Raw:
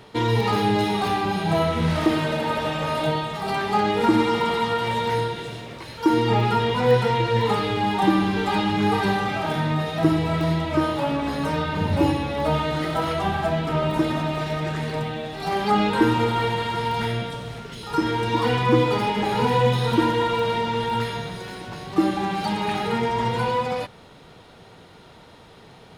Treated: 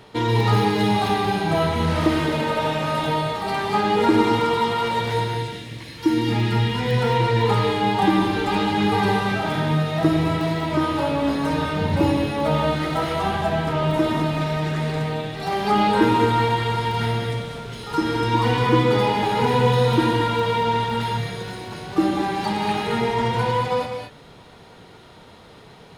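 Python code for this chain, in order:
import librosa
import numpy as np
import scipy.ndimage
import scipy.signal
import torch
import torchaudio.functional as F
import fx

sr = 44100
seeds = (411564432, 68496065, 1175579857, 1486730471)

y = fx.spec_box(x, sr, start_s=5.38, length_s=1.59, low_hz=360.0, high_hz=1600.0, gain_db=-8)
y = fx.rev_gated(y, sr, seeds[0], gate_ms=250, shape='rising', drr_db=3.5)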